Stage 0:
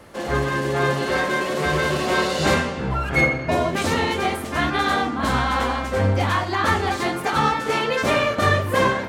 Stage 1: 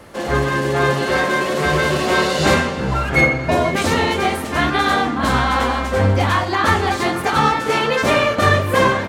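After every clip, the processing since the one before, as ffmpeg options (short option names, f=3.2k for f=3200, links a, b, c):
-af "aecho=1:1:481|962|1443:0.141|0.0396|0.0111,volume=4dB"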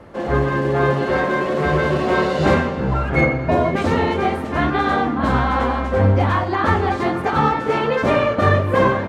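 -af "lowpass=f=1.1k:p=1,volume=1dB"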